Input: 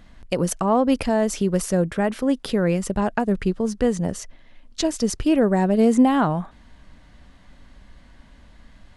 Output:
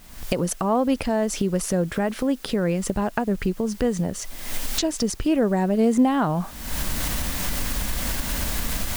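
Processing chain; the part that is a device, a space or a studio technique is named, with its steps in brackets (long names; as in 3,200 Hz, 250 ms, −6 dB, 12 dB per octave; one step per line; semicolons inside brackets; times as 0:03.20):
cheap recorder with automatic gain (white noise bed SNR 29 dB; camcorder AGC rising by 49 dB per second)
level −2.5 dB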